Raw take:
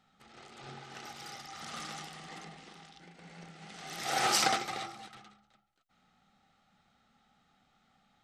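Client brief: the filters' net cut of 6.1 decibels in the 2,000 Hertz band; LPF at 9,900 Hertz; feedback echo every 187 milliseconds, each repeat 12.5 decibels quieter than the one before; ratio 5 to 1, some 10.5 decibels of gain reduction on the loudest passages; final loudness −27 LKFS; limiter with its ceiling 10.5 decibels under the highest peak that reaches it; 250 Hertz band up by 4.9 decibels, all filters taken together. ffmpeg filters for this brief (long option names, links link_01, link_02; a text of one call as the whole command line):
ffmpeg -i in.wav -af "lowpass=9900,equalizer=frequency=250:width_type=o:gain=7,equalizer=frequency=2000:width_type=o:gain=-8,acompressor=threshold=-36dB:ratio=5,alimiter=level_in=11dB:limit=-24dB:level=0:latency=1,volume=-11dB,aecho=1:1:187|374|561:0.237|0.0569|0.0137,volume=20dB" out.wav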